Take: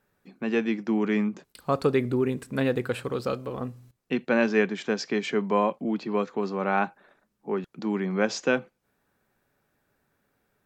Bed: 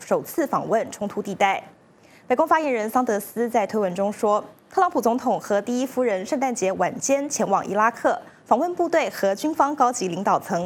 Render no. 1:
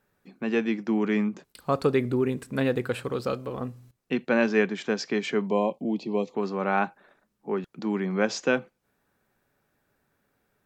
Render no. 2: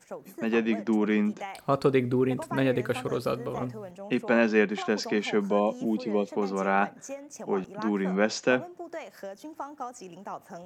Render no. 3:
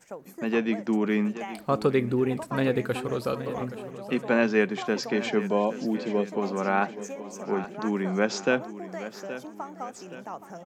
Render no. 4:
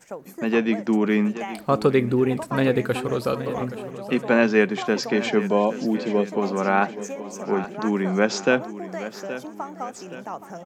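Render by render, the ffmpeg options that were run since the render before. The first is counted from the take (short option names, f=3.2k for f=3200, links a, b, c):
-filter_complex "[0:a]asettb=1/sr,asplit=3[a][b][c];[a]atrim=end=5.474[d];[b]atrim=start=5.47:end=6.35,asetpts=PTS-STARTPTS,afade=t=in:d=0.004:c=qsin,afade=t=out:st=0.876:d=0.004:c=qsin,asuperstop=centerf=1500:order=4:qfactor=0.91[e];[c]atrim=start=6.346[f];[d][e]acrossfade=d=0.004:c1=hsin:c2=qsin[g];[g][f]acrossfade=d=0.004:c1=qsin:c2=hsin"
-filter_complex "[1:a]volume=-18.5dB[a];[0:a][a]amix=inputs=2:normalize=0"
-af "aecho=1:1:823|1646|2469|3292:0.211|0.0951|0.0428|0.0193"
-af "volume=4.5dB"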